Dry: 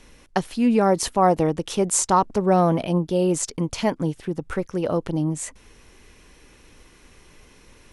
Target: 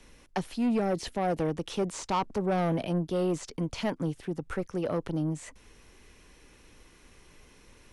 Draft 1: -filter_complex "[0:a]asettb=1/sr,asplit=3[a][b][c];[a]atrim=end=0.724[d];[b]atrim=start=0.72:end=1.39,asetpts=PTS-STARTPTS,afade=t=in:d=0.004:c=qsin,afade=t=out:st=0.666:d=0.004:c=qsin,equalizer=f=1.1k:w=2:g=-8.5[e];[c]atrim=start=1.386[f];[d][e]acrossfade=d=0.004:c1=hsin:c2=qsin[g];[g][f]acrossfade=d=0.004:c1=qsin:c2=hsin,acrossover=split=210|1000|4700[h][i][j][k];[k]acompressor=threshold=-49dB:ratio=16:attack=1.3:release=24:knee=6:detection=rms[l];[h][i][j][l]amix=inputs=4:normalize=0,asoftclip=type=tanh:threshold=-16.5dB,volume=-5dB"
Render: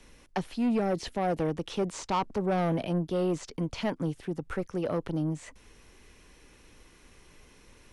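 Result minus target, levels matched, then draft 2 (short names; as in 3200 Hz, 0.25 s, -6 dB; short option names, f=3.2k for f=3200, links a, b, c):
compressor: peak gain reduction +7 dB
-filter_complex "[0:a]asettb=1/sr,asplit=3[a][b][c];[a]atrim=end=0.724[d];[b]atrim=start=0.72:end=1.39,asetpts=PTS-STARTPTS,afade=t=in:d=0.004:c=qsin,afade=t=out:st=0.666:d=0.004:c=qsin,equalizer=f=1.1k:w=2:g=-8.5[e];[c]atrim=start=1.386[f];[d][e]acrossfade=d=0.004:c1=hsin:c2=qsin[g];[g][f]acrossfade=d=0.004:c1=qsin:c2=hsin,acrossover=split=210|1000|4700[h][i][j][k];[k]acompressor=threshold=-41.5dB:ratio=16:attack=1.3:release=24:knee=6:detection=rms[l];[h][i][j][l]amix=inputs=4:normalize=0,asoftclip=type=tanh:threshold=-16.5dB,volume=-5dB"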